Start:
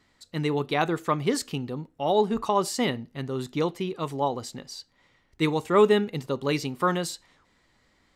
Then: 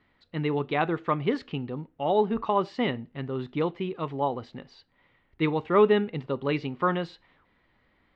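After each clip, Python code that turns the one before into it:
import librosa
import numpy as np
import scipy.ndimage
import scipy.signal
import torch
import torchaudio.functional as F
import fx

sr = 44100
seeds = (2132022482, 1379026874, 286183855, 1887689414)

y = scipy.signal.sosfilt(scipy.signal.butter(4, 3200.0, 'lowpass', fs=sr, output='sos'), x)
y = F.gain(torch.from_numpy(y), -1.0).numpy()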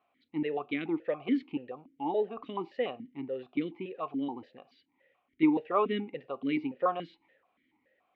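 y = fx.vowel_held(x, sr, hz=7.0)
y = F.gain(torch.from_numpy(y), 6.0).numpy()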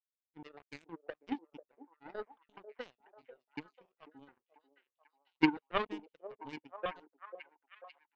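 y = fx.power_curve(x, sr, exponent=3.0)
y = fx.echo_stepped(y, sr, ms=492, hz=490.0, octaves=0.7, feedback_pct=70, wet_db=-9.5)
y = F.gain(torch.from_numpy(y), 5.5).numpy()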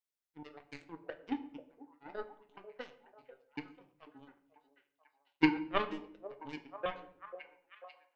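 y = fx.room_shoebox(x, sr, seeds[0], volume_m3=110.0, walls='mixed', distance_m=0.32)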